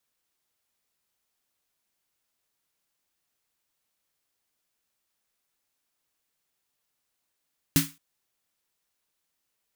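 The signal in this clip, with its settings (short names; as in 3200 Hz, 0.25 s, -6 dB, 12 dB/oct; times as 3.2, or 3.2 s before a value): snare drum length 0.22 s, tones 160 Hz, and 280 Hz, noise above 1200 Hz, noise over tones -1.5 dB, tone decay 0.23 s, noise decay 0.28 s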